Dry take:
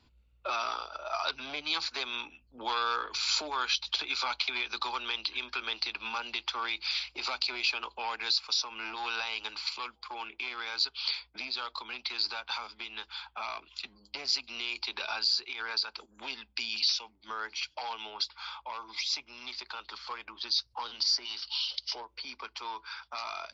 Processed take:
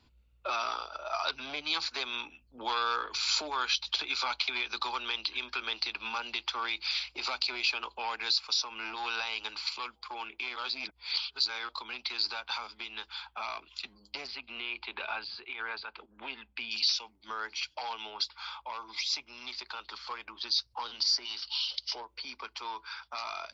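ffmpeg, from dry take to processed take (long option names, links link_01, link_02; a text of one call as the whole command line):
ffmpeg -i in.wav -filter_complex "[0:a]asettb=1/sr,asplit=3[link_01][link_02][link_03];[link_01]atrim=end=14.274[link_04];[link_02]atrim=start=14.27:end=16.71,asetpts=PTS-STARTPTS,afade=type=in:duration=0.004:curve=qsin,afade=type=out:start_time=2.436:duration=0.004:curve=qsin,lowpass=frequency=3100:width=0.5412,lowpass=frequency=3100:width=1.3066[link_05];[link_03]atrim=start=16.706[link_06];[link_04][link_05]acrossfade=duration=0.004:curve1=hsin:curve2=qsin[link_07];[link_07][link_06]acrossfade=duration=0.004:curve1=qsin:curve2=hsin,asplit=3[link_08][link_09][link_10];[link_08]atrim=end=10.562[link_11];[link_09]atrim=start=10.558:end=11.692,asetpts=PTS-STARTPTS,areverse[link_12];[link_10]atrim=start=11.688[link_13];[link_11][link_12]acrossfade=duration=0.004:curve1=hsin:curve2=hsin[link_14];[link_14][link_13]acrossfade=duration=0.004:curve1=hsin:curve2=hsin" out.wav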